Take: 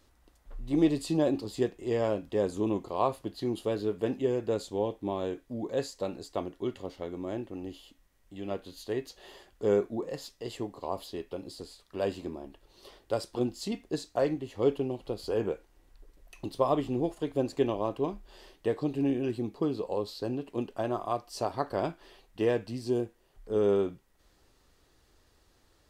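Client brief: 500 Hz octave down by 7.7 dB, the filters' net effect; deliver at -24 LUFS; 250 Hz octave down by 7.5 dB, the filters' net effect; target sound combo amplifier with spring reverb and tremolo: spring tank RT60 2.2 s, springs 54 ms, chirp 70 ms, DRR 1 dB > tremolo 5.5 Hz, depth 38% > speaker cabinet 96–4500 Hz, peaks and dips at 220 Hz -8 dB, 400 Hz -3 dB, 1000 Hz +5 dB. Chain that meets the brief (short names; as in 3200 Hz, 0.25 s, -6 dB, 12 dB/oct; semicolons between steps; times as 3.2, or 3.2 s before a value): bell 250 Hz -4 dB; bell 500 Hz -6.5 dB; spring tank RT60 2.2 s, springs 54 ms, chirp 70 ms, DRR 1 dB; tremolo 5.5 Hz, depth 38%; speaker cabinet 96–4500 Hz, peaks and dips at 220 Hz -8 dB, 400 Hz -3 dB, 1000 Hz +5 dB; gain +13 dB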